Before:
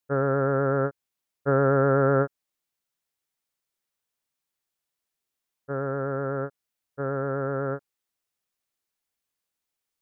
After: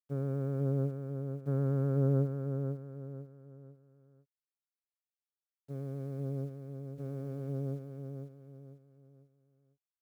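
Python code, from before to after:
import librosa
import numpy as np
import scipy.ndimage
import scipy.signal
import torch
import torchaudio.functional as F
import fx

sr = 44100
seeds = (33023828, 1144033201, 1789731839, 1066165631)

p1 = fx.wiener(x, sr, points=41)
p2 = fx.bandpass_q(p1, sr, hz=160.0, q=1.3)
p3 = np.sign(p2) * np.maximum(np.abs(p2) - 10.0 ** (-50.0 / 20.0), 0.0)
p4 = p2 + (p3 * librosa.db_to_amplitude(-5.5))
p5 = fx.quant_dither(p4, sr, seeds[0], bits=10, dither='none')
p6 = fx.echo_feedback(p5, sr, ms=496, feedback_pct=36, wet_db=-6.0)
y = p6 * librosa.db_to_amplitude(-7.5)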